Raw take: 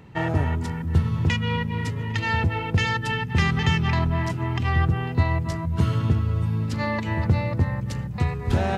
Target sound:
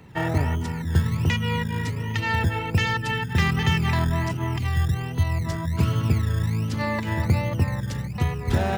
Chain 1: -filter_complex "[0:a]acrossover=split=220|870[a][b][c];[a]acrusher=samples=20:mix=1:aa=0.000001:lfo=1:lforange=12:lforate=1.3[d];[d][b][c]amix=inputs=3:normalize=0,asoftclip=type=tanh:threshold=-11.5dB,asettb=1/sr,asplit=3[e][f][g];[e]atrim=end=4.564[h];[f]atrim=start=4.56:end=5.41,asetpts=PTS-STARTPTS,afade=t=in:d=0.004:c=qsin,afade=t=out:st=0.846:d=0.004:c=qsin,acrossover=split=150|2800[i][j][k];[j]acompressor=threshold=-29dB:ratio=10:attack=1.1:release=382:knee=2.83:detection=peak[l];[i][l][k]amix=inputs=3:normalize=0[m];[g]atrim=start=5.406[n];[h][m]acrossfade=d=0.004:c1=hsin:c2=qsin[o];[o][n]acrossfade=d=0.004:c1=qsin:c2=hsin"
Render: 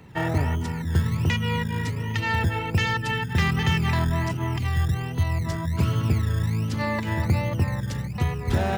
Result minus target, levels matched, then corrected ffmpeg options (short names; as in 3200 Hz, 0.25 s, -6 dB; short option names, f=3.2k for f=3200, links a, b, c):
soft clip: distortion +14 dB
-filter_complex "[0:a]acrossover=split=220|870[a][b][c];[a]acrusher=samples=20:mix=1:aa=0.000001:lfo=1:lforange=12:lforate=1.3[d];[d][b][c]amix=inputs=3:normalize=0,asoftclip=type=tanh:threshold=-3.5dB,asettb=1/sr,asplit=3[e][f][g];[e]atrim=end=4.564[h];[f]atrim=start=4.56:end=5.41,asetpts=PTS-STARTPTS,afade=t=in:d=0.004:c=qsin,afade=t=out:st=0.846:d=0.004:c=qsin,acrossover=split=150|2800[i][j][k];[j]acompressor=threshold=-29dB:ratio=10:attack=1.1:release=382:knee=2.83:detection=peak[l];[i][l][k]amix=inputs=3:normalize=0[m];[g]atrim=start=5.406[n];[h][m]acrossfade=d=0.004:c1=hsin:c2=qsin[o];[o][n]acrossfade=d=0.004:c1=qsin:c2=hsin"